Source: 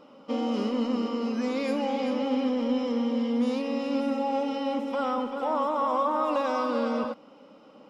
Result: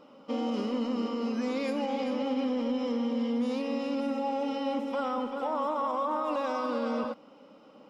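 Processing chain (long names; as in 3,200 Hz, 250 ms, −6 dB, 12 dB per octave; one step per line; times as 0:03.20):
brickwall limiter −20 dBFS, peak gain reduction 4.5 dB
level −2 dB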